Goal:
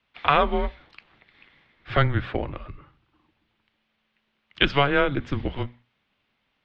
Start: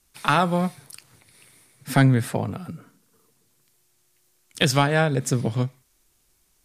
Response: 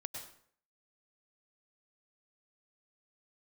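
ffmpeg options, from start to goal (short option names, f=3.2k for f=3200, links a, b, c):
-af "highpass=f=180:t=q:w=0.5412,highpass=f=180:t=q:w=1.307,lowpass=f=3.3k:t=q:w=0.5176,lowpass=f=3.3k:t=q:w=0.7071,lowpass=f=3.3k:t=q:w=1.932,afreqshift=-140,aemphasis=mode=production:type=75kf,bandreject=f=60:t=h:w=6,bandreject=f=120:t=h:w=6,bandreject=f=180:t=h:w=6,bandreject=f=240:t=h:w=6"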